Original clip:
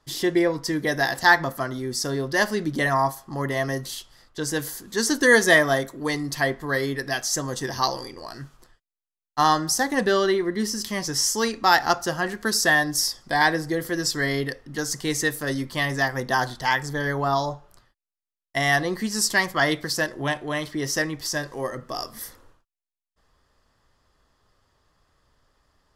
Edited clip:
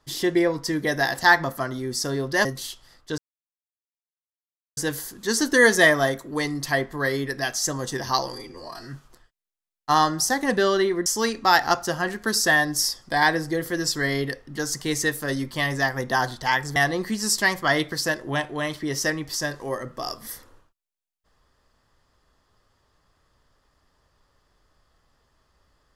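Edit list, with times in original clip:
0:02.45–0:03.73: remove
0:04.46: splice in silence 1.59 s
0:08.02–0:08.42: time-stretch 1.5×
0:10.55–0:11.25: remove
0:16.95–0:18.68: remove

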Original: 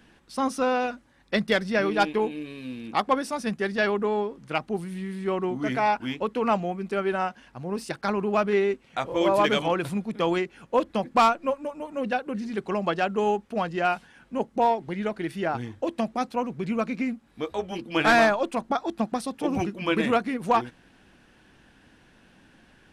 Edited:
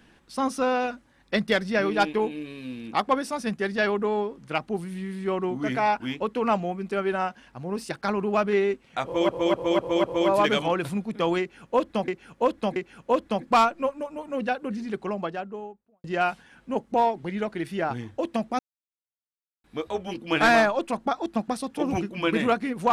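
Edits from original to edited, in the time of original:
0:09.04–0:09.29: repeat, 5 plays
0:10.40–0:11.08: repeat, 3 plays
0:12.33–0:13.68: fade out and dull
0:16.23–0:17.28: silence

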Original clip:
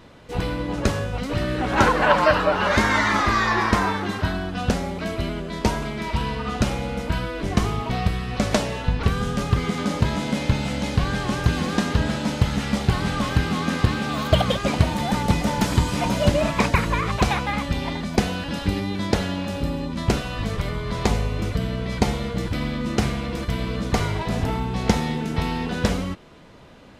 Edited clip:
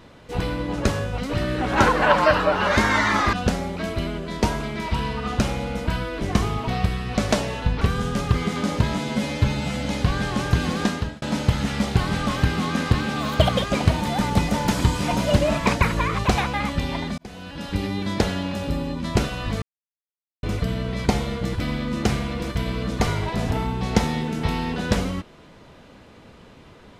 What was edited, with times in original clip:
0:03.33–0:04.55: remove
0:10.20–0:10.78: time-stretch 1.5×
0:11.78–0:12.15: fade out
0:18.11–0:18.87: fade in
0:20.55–0:21.36: silence

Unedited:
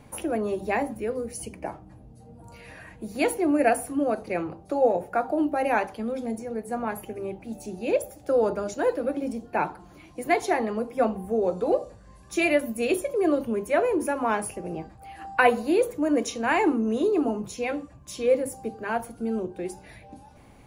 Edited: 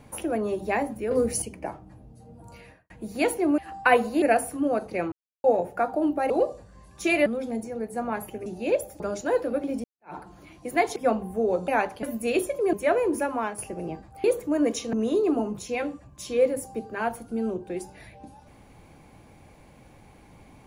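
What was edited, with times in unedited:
0:01.11–0:01.42: clip gain +8.5 dB
0:02.55–0:02.90: fade out and dull
0:04.48–0:04.80: silence
0:05.66–0:06.01: swap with 0:11.62–0:12.58
0:07.21–0:07.67: remove
0:08.21–0:08.53: remove
0:09.37–0:09.68: fade in exponential
0:10.49–0:10.90: remove
0:13.28–0:13.60: remove
0:14.13–0:14.45: fade out, to −10 dB
0:15.11–0:15.75: move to 0:03.58
0:16.44–0:16.82: remove

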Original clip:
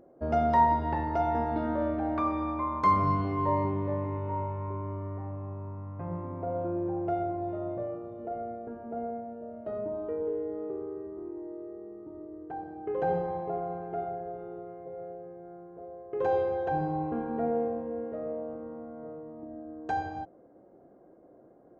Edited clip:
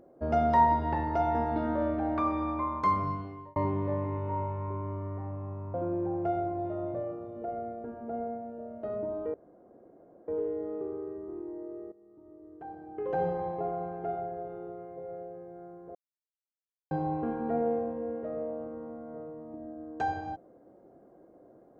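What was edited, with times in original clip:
0:02.60–0:03.56: fade out
0:05.74–0:06.57: remove
0:10.17: splice in room tone 0.94 s
0:11.81–0:13.35: fade in, from −17 dB
0:15.84–0:16.80: silence

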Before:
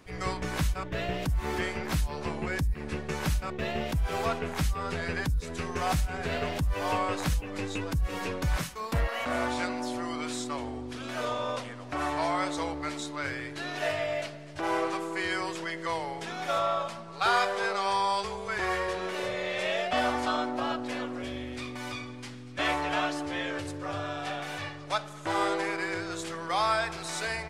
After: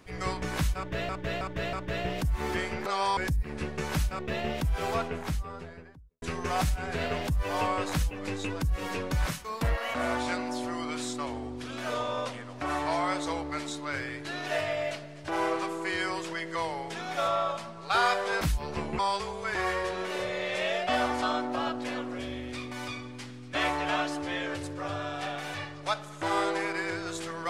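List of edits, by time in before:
0:00.77–0:01.09: repeat, 4 plays
0:01.90–0:02.48: swap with 0:17.72–0:18.03
0:04.12–0:05.53: fade out and dull

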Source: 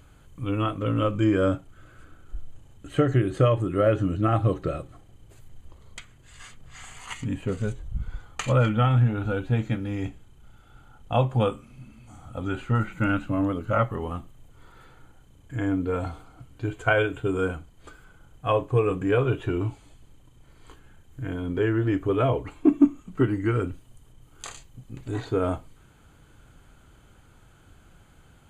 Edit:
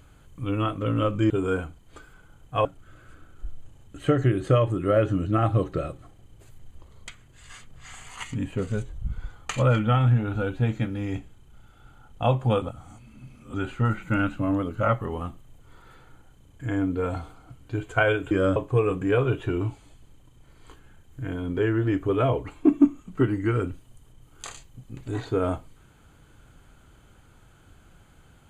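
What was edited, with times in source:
0:01.30–0:01.55: swap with 0:17.21–0:18.56
0:11.52–0:12.44: reverse

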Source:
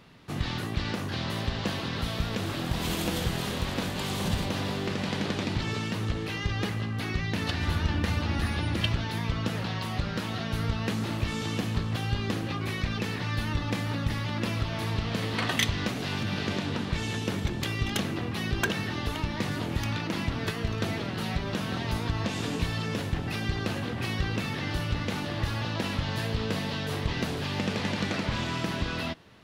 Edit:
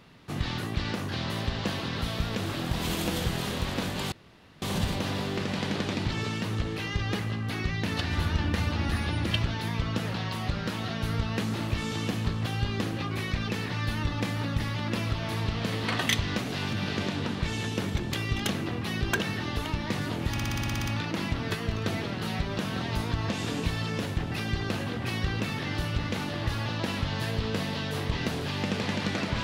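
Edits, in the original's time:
0:04.12: splice in room tone 0.50 s
0:19.82: stutter 0.06 s, 10 plays

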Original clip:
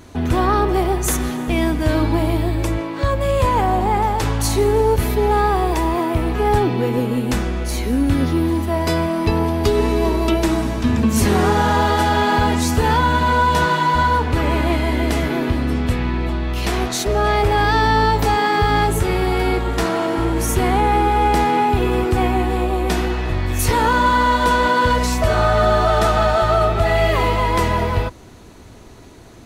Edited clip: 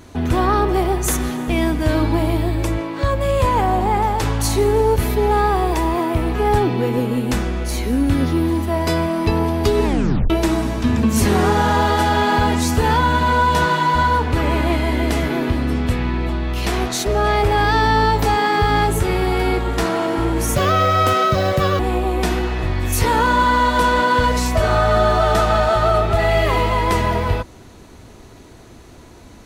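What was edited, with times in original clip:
0:09.84: tape stop 0.46 s
0:20.56–0:22.46: play speed 154%

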